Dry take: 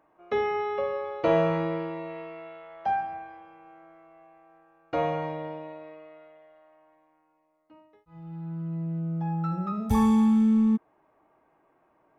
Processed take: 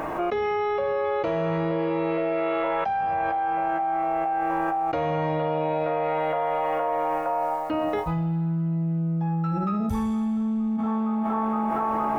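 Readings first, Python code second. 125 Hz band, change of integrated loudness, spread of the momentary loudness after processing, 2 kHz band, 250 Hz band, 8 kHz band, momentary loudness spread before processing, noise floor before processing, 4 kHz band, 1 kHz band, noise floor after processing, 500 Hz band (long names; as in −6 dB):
+5.0 dB, +1.5 dB, 1 LU, +6.5 dB, +0.5 dB, can't be measured, 21 LU, −68 dBFS, +3.5 dB, +9.0 dB, −27 dBFS, +5.5 dB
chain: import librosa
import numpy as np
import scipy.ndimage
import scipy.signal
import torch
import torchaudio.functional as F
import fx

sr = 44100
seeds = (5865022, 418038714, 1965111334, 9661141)

p1 = fx.low_shelf(x, sr, hz=100.0, db=7.5)
p2 = fx.hum_notches(p1, sr, base_hz=60, count=5)
p3 = 10.0 ** (-25.0 / 20.0) * np.tanh(p2 / 10.0 ** (-25.0 / 20.0))
p4 = p2 + (p3 * librosa.db_to_amplitude(-5.5))
p5 = fx.echo_banded(p4, sr, ms=465, feedback_pct=65, hz=940.0, wet_db=-11.0)
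p6 = fx.env_flatten(p5, sr, amount_pct=100)
y = p6 * librosa.db_to_amplitude(-8.5)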